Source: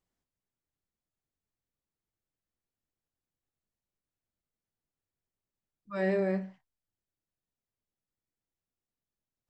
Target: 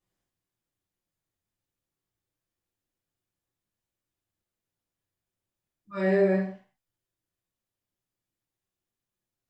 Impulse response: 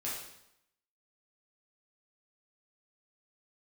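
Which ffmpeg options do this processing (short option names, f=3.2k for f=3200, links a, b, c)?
-filter_complex "[1:a]atrim=start_sample=2205,afade=t=out:st=0.31:d=0.01,atrim=end_sample=14112,asetrate=61740,aresample=44100[a];[0:a][a]afir=irnorm=-1:irlink=0,volume=4.5dB"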